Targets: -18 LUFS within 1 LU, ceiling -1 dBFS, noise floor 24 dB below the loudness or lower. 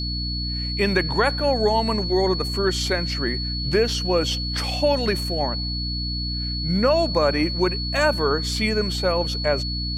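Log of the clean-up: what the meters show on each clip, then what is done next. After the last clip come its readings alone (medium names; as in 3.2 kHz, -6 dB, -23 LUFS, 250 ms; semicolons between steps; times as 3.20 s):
hum 60 Hz; highest harmonic 300 Hz; hum level -26 dBFS; steady tone 4.4 kHz; tone level -28 dBFS; loudness -22.0 LUFS; peak level -6.5 dBFS; loudness target -18.0 LUFS
-> de-hum 60 Hz, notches 5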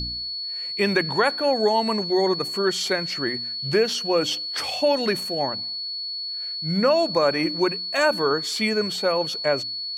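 hum not found; steady tone 4.4 kHz; tone level -28 dBFS
-> band-stop 4.4 kHz, Q 30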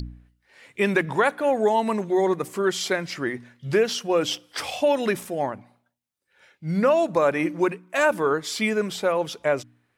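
steady tone not found; loudness -24.0 LUFS; peak level -7.5 dBFS; loudness target -18.0 LUFS
-> trim +6 dB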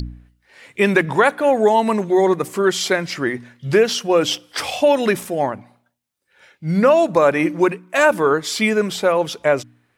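loudness -18.0 LUFS; peak level -1.5 dBFS; noise floor -66 dBFS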